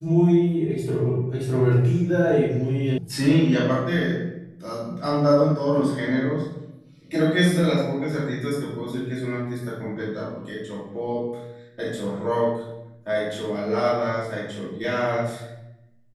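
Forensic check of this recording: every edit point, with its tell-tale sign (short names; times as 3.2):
2.98 sound cut off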